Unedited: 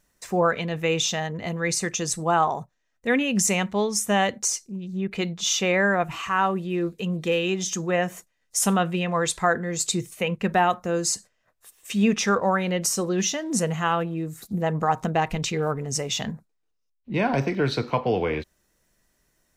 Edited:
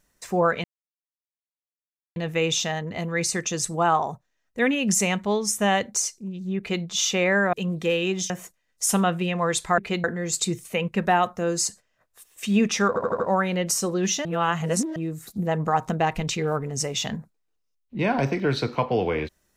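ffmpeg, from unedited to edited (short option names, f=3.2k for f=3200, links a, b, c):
-filter_complex "[0:a]asplit=12[a][b][c][d][e][f][g][h][i][j][k][l];[a]atrim=end=0.64,asetpts=PTS-STARTPTS,afade=t=out:st=0.636:d=0.004:c=hsin,apad=pad_dur=1.52[m];[b]atrim=start=0.64:end=6.012,asetpts=PTS-STARTPTS,afade=t=in:d=0.004:c=hsin[n];[c]atrim=start=6.948:end=7.722[o];[d]atrim=start=8.028:end=9.512[p];[e]atrim=start=5.058:end=5.322[q];[f]atrim=start=9.508:end=12.432[r];[g]atrim=start=12.348:end=12.432[s];[h]atrim=start=12.348:end=12.432[t];[i]atrim=start=12.348:end=12.432[u];[j]atrim=start=12.348:end=13.402[v];[k]atrim=start=13.398:end=14.112,asetpts=PTS-STARTPTS,areverse[w];[l]atrim=start=14.108[x];[m][n]concat=n=2:v=0:a=1[y];[y][o]acrossfade=d=0.004:c1=hsin:c2=hsin[z];[z][p]acrossfade=d=0.004:c1=hsin:c2=hsin[aa];[aa][q]acrossfade=d=0.004:c1=hsin:c2=hsin[ab];[ab][r]acrossfade=d=0.004:c1=hsin:c2=hsin[ac];[ac][s]acrossfade=d=0.004:c1=hsin:c2=hsin[ad];[ad][t]acrossfade=d=0.004:c1=hsin:c2=hsin[ae];[ae][u]acrossfade=d=0.004:c1=hsin:c2=hsin[af];[af][v]acrossfade=d=0.004:c1=hsin:c2=hsin[ag];[ag][w]acrossfade=d=0.004:c1=hsin:c2=hsin[ah];[ah][x]acrossfade=d=0.004:c1=hsin:c2=hsin"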